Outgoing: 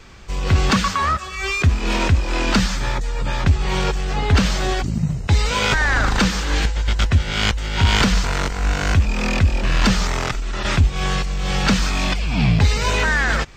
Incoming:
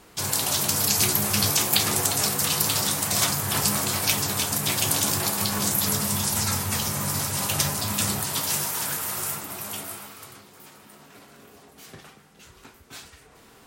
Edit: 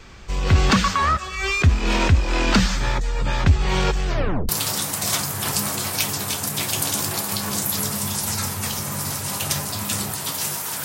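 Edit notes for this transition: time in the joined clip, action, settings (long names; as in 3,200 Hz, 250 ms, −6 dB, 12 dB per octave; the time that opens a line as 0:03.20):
outgoing
0:04.07: tape stop 0.42 s
0:04.49: continue with incoming from 0:02.58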